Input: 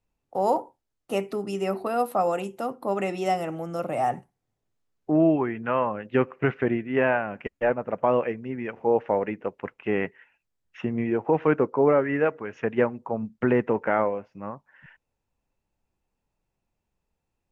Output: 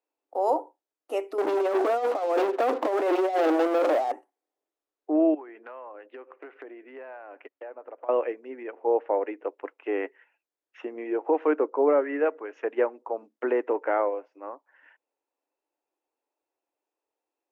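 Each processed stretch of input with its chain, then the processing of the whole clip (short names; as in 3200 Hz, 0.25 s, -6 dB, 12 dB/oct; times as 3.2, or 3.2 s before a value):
1.38–4.12 negative-ratio compressor -31 dBFS, ratio -0.5 + Bessel low-pass 1500 Hz + sample leveller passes 5
5.34–8.09 HPF 370 Hz 6 dB/oct + air absorption 160 m + compressor 12:1, threshold -35 dBFS
8.63–9.14 air absorption 130 m + mismatched tape noise reduction decoder only
whole clip: elliptic high-pass 290 Hz, stop band 40 dB; bell 550 Hz +6 dB 2.8 oct; gain -6.5 dB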